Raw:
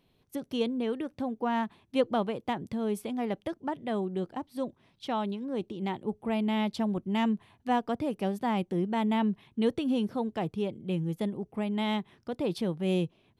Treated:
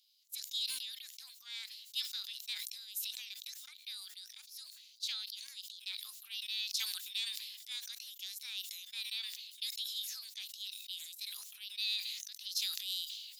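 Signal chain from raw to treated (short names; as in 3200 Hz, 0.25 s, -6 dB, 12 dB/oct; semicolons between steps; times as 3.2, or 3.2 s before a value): inverse Chebyshev high-pass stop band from 520 Hz, stop band 80 dB; formant shift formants +3 st; sustainer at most 39 dB/s; gain +7.5 dB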